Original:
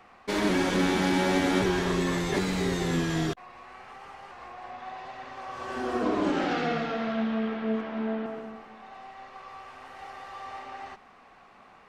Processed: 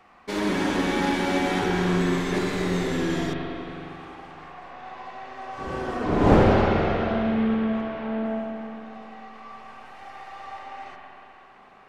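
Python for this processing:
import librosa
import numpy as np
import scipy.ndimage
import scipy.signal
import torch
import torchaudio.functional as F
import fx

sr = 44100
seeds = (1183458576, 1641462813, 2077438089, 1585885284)

y = fx.dmg_wind(x, sr, seeds[0], corner_hz=460.0, level_db=-29.0, at=(5.58, 6.85), fade=0.02)
y = fx.rev_spring(y, sr, rt60_s=3.2, pass_ms=(39, 45), chirp_ms=55, drr_db=-0.5)
y = F.gain(torch.from_numpy(y), -1.5).numpy()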